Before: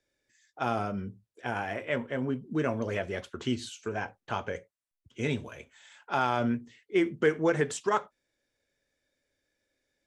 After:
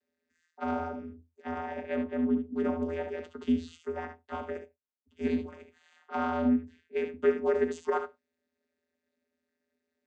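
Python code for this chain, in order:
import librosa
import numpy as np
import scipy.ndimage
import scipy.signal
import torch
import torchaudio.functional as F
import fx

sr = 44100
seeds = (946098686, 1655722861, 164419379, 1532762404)

y = fx.room_early_taps(x, sr, ms=(64, 74), db=(-11.5, -10.0))
y = fx.vocoder(y, sr, bands=16, carrier='square', carrier_hz=82.7)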